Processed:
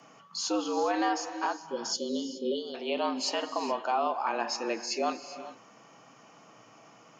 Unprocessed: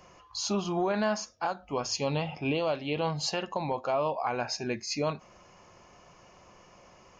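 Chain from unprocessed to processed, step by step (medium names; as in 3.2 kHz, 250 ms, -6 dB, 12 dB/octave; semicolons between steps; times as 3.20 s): time-frequency box 1.57–2.75 s, 470–2800 Hz -29 dB; gated-style reverb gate 440 ms rising, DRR 10.5 dB; frequency shift +110 Hz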